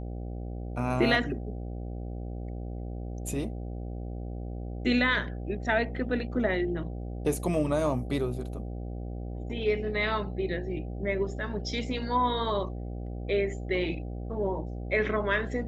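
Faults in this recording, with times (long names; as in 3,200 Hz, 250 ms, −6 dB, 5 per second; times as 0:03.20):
mains buzz 60 Hz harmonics 13 −36 dBFS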